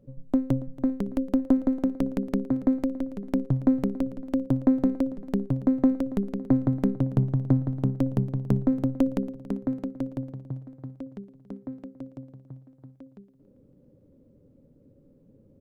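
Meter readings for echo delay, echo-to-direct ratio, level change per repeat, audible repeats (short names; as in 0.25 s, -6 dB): 0.28 s, -16.0 dB, -4.5 dB, 4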